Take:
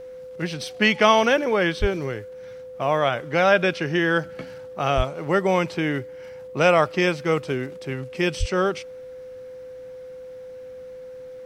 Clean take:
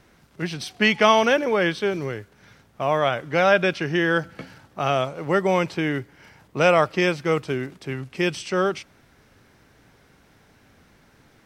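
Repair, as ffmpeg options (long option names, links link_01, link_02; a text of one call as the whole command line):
ffmpeg -i in.wav -filter_complex "[0:a]bandreject=frequency=510:width=30,asplit=3[link_01][link_02][link_03];[link_01]afade=type=out:start_time=1.8:duration=0.02[link_04];[link_02]highpass=frequency=140:width=0.5412,highpass=frequency=140:width=1.3066,afade=type=in:start_time=1.8:duration=0.02,afade=type=out:start_time=1.92:duration=0.02[link_05];[link_03]afade=type=in:start_time=1.92:duration=0.02[link_06];[link_04][link_05][link_06]amix=inputs=3:normalize=0,asplit=3[link_07][link_08][link_09];[link_07]afade=type=out:start_time=4.96:duration=0.02[link_10];[link_08]highpass=frequency=140:width=0.5412,highpass=frequency=140:width=1.3066,afade=type=in:start_time=4.96:duration=0.02,afade=type=out:start_time=5.08:duration=0.02[link_11];[link_09]afade=type=in:start_time=5.08:duration=0.02[link_12];[link_10][link_11][link_12]amix=inputs=3:normalize=0,asplit=3[link_13][link_14][link_15];[link_13]afade=type=out:start_time=8.39:duration=0.02[link_16];[link_14]highpass=frequency=140:width=0.5412,highpass=frequency=140:width=1.3066,afade=type=in:start_time=8.39:duration=0.02,afade=type=out:start_time=8.51:duration=0.02[link_17];[link_15]afade=type=in:start_time=8.51:duration=0.02[link_18];[link_16][link_17][link_18]amix=inputs=3:normalize=0" out.wav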